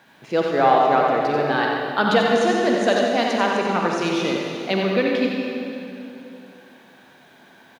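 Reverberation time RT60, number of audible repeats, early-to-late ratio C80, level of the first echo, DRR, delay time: 2.8 s, 1, −0.5 dB, −5.5 dB, −2.0 dB, 90 ms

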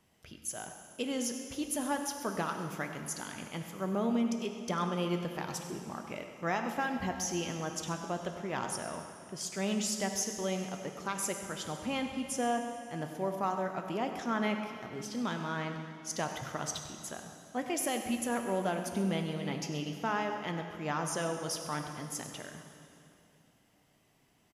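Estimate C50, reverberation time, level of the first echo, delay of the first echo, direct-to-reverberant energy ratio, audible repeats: 5.5 dB, 2.8 s, −14.0 dB, 98 ms, 4.0 dB, 2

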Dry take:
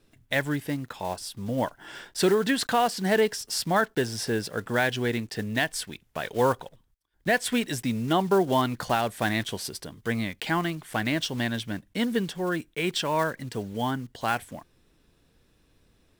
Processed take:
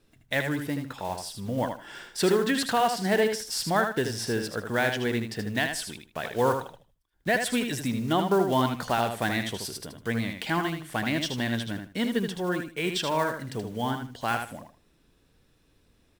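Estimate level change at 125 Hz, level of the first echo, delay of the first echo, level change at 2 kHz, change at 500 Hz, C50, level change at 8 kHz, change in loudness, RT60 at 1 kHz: −0.5 dB, −6.5 dB, 78 ms, −0.5 dB, −0.5 dB, no reverb audible, −0.5 dB, −0.5 dB, no reverb audible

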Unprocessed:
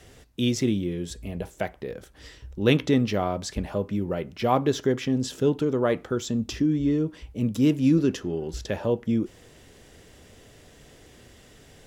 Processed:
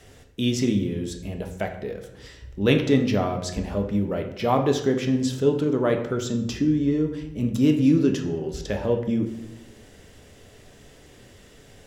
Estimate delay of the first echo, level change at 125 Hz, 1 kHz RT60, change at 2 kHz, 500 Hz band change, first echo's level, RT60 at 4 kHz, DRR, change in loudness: no echo audible, +2.0 dB, 0.75 s, +1.5 dB, +2.0 dB, no echo audible, 0.60 s, 4.5 dB, +2.0 dB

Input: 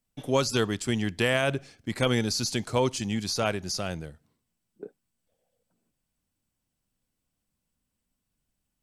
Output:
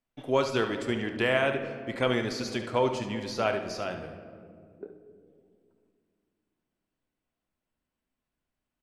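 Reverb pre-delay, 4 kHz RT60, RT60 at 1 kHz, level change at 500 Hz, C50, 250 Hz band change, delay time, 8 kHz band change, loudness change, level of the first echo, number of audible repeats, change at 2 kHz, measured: 3 ms, 1.1 s, 1.8 s, +0.5 dB, 6.5 dB, −2.5 dB, 71 ms, −12.0 dB, −1.5 dB, −10.5 dB, 1, 0.0 dB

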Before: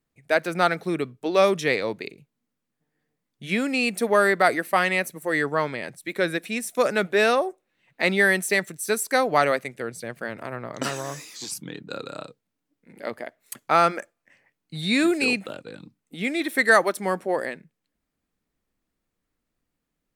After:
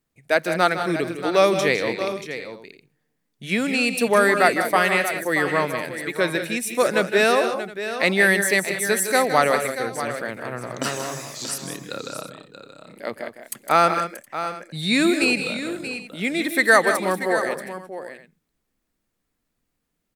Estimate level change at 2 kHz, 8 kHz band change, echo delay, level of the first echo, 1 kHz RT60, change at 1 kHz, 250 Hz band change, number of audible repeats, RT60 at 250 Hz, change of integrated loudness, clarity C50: +3.0 dB, +5.5 dB, 158 ms, −11.0 dB, no reverb audible, +2.5 dB, +2.5 dB, 4, no reverb audible, +2.0 dB, no reverb audible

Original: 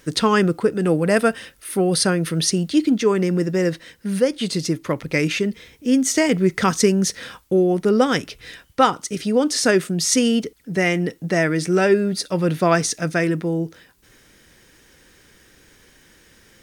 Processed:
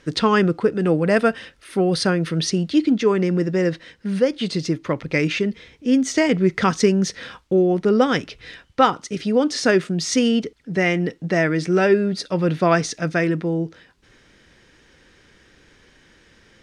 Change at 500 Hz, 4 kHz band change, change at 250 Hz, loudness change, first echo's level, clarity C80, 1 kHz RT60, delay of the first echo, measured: 0.0 dB, −2.0 dB, 0.0 dB, −0.5 dB, no echo audible, no reverb audible, no reverb audible, no echo audible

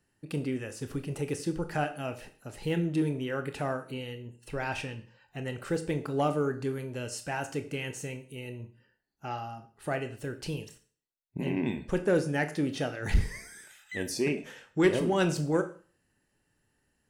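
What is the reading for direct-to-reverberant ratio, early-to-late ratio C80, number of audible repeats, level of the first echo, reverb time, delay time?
8.0 dB, 17.0 dB, no echo audible, no echo audible, 0.40 s, no echo audible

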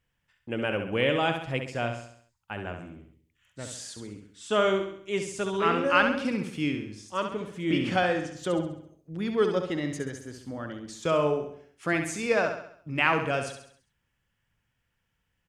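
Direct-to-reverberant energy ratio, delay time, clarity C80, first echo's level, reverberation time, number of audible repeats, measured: no reverb audible, 67 ms, no reverb audible, −7.0 dB, no reverb audible, 5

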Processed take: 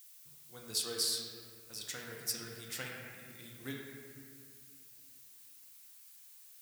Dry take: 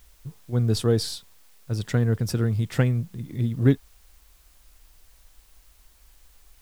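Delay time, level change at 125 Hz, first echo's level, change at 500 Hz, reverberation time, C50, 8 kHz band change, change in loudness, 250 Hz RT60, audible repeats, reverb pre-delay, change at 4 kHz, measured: no echo audible, −31.5 dB, no echo audible, −19.0 dB, 2.1 s, 0.5 dB, +1.0 dB, −14.0 dB, 2.7 s, no echo audible, 4 ms, −2.0 dB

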